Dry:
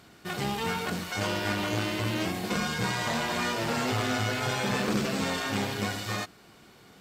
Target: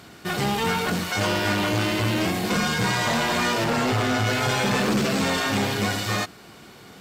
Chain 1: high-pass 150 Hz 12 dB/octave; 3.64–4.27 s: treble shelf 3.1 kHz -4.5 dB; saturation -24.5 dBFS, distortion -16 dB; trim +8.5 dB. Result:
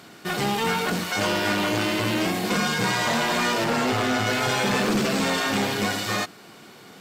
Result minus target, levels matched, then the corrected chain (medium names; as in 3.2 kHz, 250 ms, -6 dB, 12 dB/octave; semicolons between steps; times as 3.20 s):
125 Hz band -4.0 dB
high-pass 48 Hz 12 dB/octave; 3.64–4.27 s: treble shelf 3.1 kHz -4.5 dB; saturation -24.5 dBFS, distortion -15 dB; trim +8.5 dB